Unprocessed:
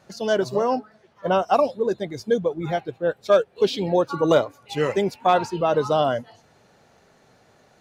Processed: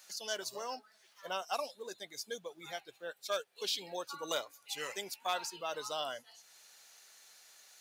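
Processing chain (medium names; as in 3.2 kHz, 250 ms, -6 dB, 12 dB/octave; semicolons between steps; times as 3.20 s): differentiator; tape noise reduction on one side only encoder only; trim +1 dB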